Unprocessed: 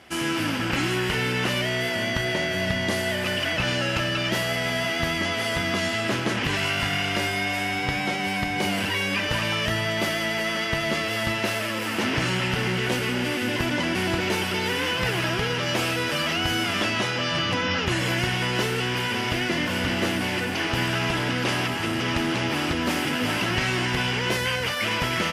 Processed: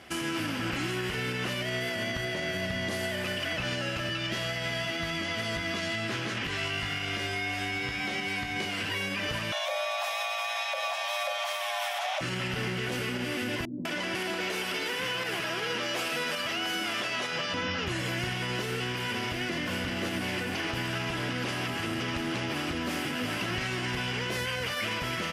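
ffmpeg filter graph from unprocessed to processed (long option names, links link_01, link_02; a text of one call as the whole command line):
ffmpeg -i in.wav -filter_complex "[0:a]asettb=1/sr,asplit=3[link_01][link_02][link_03];[link_01]atrim=end=4.094[link_04];[link_02]atrim=start=4.09:end=8.92,asetpts=PTS-STARTPTS,afade=type=in:duration=0.004:curve=qsin,afade=type=out:start_time=4.826:duration=0.004:curve=qsin,acrossover=split=420|1100|7300[link_05][link_06][link_07][link_08];[link_05]acompressor=threshold=-33dB:ratio=3[link_09];[link_06]acompressor=threshold=-43dB:ratio=3[link_10];[link_07]acompressor=threshold=-29dB:ratio=3[link_11];[link_08]acompressor=threshold=-57dB:ratio=3[link_12];[link_09][link_10][link_11][link_12]amix=inputs=4:normalize=0,asplit=2[link_13][link_14];[link_14]adelay=18,volume=-6dB[link_15];[link_13][link_15]amix=inputs=2:normalize=0,atrim=end_sample=213003[link_16];[link_03]atrim=start=8.916[link_17];[link_04][link_16]acrossfade=duration=0.004:curve1=hsin:curve2=qsin[link_18];[link_18][link_17]acrossfade=duration=0.004:curve1=qsin:curve2=hsin,asettb=1/sr,asplit=3[link_19][link_20][link_21];[link_19]atrim=end=9.524[link_22];[link_20]atrim=start=9.52:end=12.21,asetpts=PTS-STARTPTS,afade=type=in:duration=0.004:curve=qsin,afade=type=out:start_time=2.686:duration=0.004:curve=qsin,lowshelf=frequency=150:gain=7.5,afreqshift=490[link_23];[link_21]atrim=start=12.206[link_24];[link_22][link_23]acrossfade=duration=0.004:curve1=hsin:curve2=qsin[link_25];[link_25][link_24]acrossfade=duration=0.004:curve1=qsin:curve2=hsin,asettb=1/sr,asplit=3[link_26][link_27][link_28];[link_26]atrim=end=13.654[link_29];[link_27]atrim=start=13.65:end=17.54,asetpts=PTS-STARTPTS,afade=type=in:duration=0.004:curve=qsin,afade=type=out:start_time=3.886:duration=0.004:curve=qsin,highpass=230,acrossover=split=300[link_30][link_31];[link_31]adelay=200[link_32];[link_30][link_32]amix=inputs=2:normalize=0,atrim=end_sample=171549[link_33];[link_28]atrim=start=17.536[link_34];[link_29][link_33]acrossfade=duration=0.004:curve1=hsin:curve2=qsin[link_35];[link_35][link_34]acrossfade=duration=0.004:curve1=qsin:curve2=hsin,bandreject=frequency=900:width=14,alimiter=limit=-22.5dB:level=0:latency=1:release=186" out.wav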